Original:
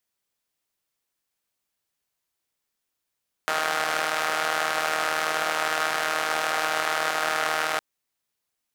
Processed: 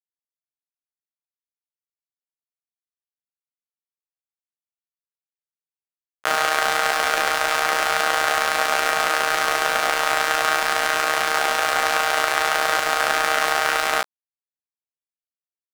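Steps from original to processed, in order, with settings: de-hum 156.2 Hz, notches 2; sample gate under -33.5 dBFS; granular stretch 1.8×, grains 69 ms; gain +6.5 dB

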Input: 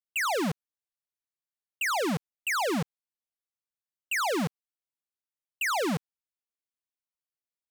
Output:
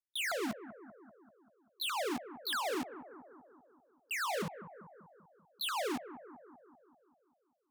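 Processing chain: repeated pitch sweeps +9.5 st, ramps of 0.316 s; analogue delay 0.194 s, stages 2048, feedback 61%, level -13 dB; gain -6.5 dB

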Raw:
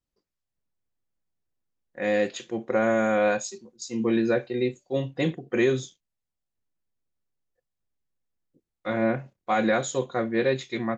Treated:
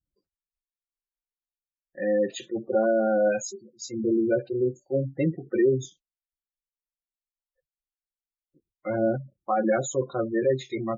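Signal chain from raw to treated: spectral gate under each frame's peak -15 dB strong; notch comb 240 Hz; gain +2 dB

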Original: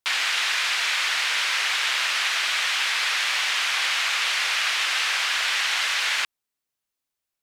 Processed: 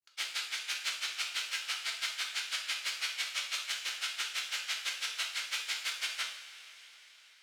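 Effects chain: limiter -19 dBFS, peak gain reduction 7.5 dB; grains 84 ms, grains 6/s, spray 30 ms, pitch spread up and down by 0 st; two-slope reverb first 0.6 s, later 4.9 s, from -17 dB, DRR -0.5 dB; formant shift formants +4 st; gain -4.5 dB

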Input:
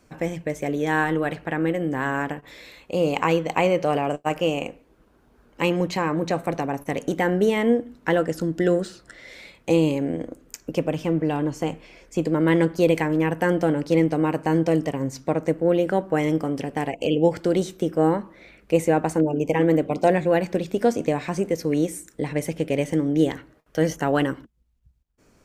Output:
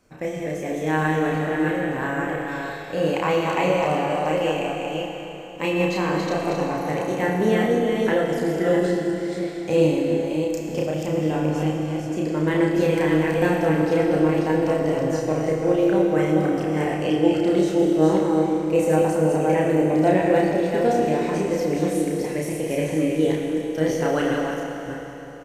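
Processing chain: reverse delay 0.337 s, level -3.5 dB; doubler 32 ms -2.5 dB; Schroeder reverb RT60 3.6 s, combs from 26 ms, DRR 1.5 dB; gain -4.5 dB

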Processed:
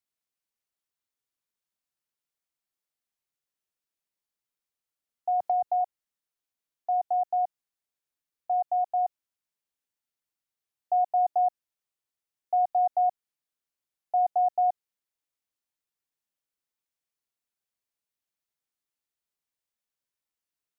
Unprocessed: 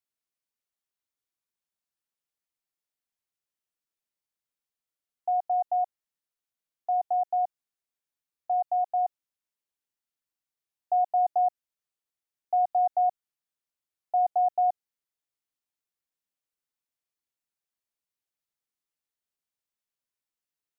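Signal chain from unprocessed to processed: 5.4–5.81 three-band squash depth 70%

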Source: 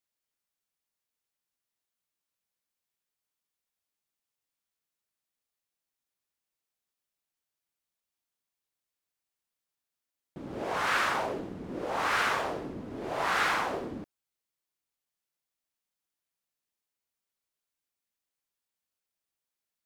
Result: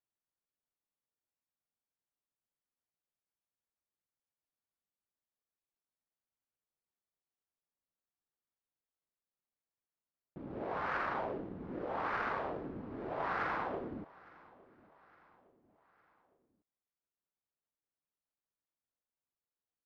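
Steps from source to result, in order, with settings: median filter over 15 samples; air absorption 360 m; feedback echo 0.86 s, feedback 49%, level -23 dB; gain -4 dB

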